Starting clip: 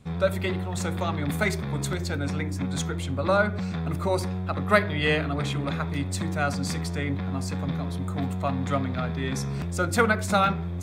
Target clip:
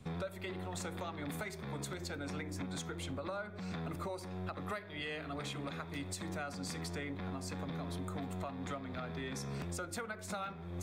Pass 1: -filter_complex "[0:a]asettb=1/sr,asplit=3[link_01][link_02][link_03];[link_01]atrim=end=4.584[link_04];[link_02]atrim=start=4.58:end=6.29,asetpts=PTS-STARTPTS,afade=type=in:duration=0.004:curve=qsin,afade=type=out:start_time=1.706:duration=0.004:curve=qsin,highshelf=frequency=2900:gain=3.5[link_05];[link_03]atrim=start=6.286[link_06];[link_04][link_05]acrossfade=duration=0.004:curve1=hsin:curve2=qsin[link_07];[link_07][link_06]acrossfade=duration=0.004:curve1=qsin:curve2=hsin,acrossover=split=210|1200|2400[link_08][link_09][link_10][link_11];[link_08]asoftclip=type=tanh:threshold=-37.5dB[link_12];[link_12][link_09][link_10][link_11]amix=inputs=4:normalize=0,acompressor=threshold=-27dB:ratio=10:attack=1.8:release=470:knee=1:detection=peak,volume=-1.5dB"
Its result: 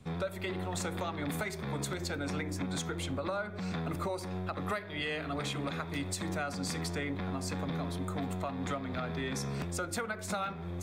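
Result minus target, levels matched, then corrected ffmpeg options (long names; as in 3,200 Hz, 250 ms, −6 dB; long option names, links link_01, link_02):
downward compressor: peak gain reduction −6 dB
-filter_complex "[0:a]asettb=1/sr,asplit=3[link_01][link_02][link_03];[link_01]atrim=end=4.584[link_04];[link_02]atrim=start=4.58:end=6.29,asetpts=PTS-STARTPTS,afade=type=in:duration=0.004:curve=qsin,afade=type=out:start_time=1.706:duration=0.004:curve=qsin,highshelf=frequency=2900:gain=3.5[link_05];[link_03]atrim=start=6.286[link_06];[link_04][link_05]acrossfade=duration=0.004:curve1=hsin:curve2=qsin[link_07];[link_07][link_06]acrossfade=duration=0.004:curve1=qsin:curve2=hsin,acrossover=split=210|1200|2400[link_08][link_09][link_10][link_11];[link_08]asoftclip=type=tanh:threshold=-37.5dB[link_12];[link_12][link_09][link_10][link_11]amix=inputs=4:normalize=0,acompressor=threshold=-33.5dB:ratio=10:attack=1.8:release=470:knee=1:detection=peak,volume=-1.5dB"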